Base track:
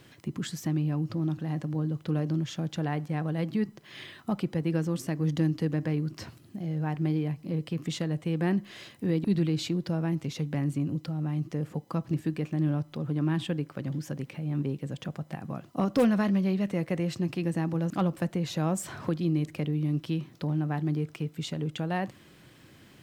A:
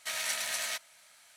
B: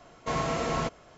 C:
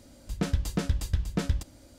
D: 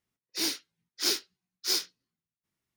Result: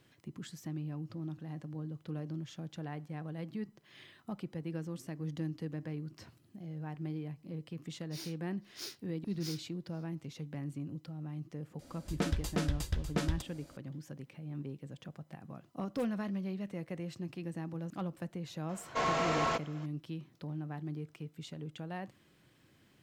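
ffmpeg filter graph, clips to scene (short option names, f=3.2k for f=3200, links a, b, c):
-filter_complex "[0:a]volume=-11.5dB[a];[4:a]asplit=2[b][c];[c]adelay=489.8,volume=-20dB,highshelf=f=4k:g=-11[d];[b][d]amix=inputs=2:normalize=0[e];[3:a]bass=f=250:g=-6,treble=f=4k:g=-2[f];[2:a]asplit=2[g][h];[h]highpass=f=720:p=1,volume=15dB,asoftclip=type=tanh:threshold=-16dB[i];[g][i]amix=inputs=2:normalize=0,lowpass=f=3.6k:p=1,volume=-6dB[j];[e]atrim=end=2.76,asetpts=PTS-STARTPTS,volume=-17dB,afade=t=in:d=0.004:c=hsin,afade=t=out:st=2.756:d=0.004:c=hsin,adelay=7760[k];[f]atrim=end=1.98,asetpts=PTS-STARTPTS,volume=-1dB,afade=t=in:d=0.004:c=hsin,afade=t=out:st=1.976:d=0.004:c=hsin,adelay=11790[l];[j]atrim=end=1.17,asetpts=PTS-STARTPTS,volume=-6dB,afade=t=in:d=0.004:c=hsin,afade=t=out:st=1.166:d=0.004:c=hsin,adelay=18690[m];[a][k][l][m]amix=inputs=4:normalize=0"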